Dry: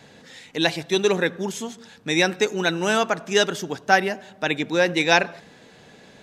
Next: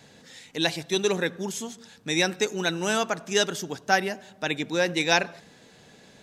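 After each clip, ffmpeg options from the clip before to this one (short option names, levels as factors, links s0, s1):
-af "bass=f=250:g=2,treble=f=4000:g=6,volume=0.562"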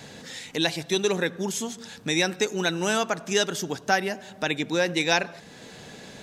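-af "acompressor=threshold=0.00562:ratio=1.5,volume=2.82"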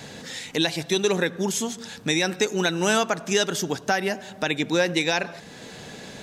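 -af "alimiter=limit=0.211:level=0:latency=1:release=134,volume=1.5"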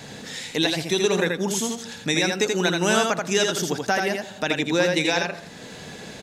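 -af "aecho=1:1:82:0.631"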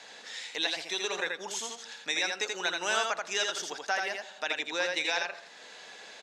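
-af "highpass=720,lowpass=6600,volume=0.531"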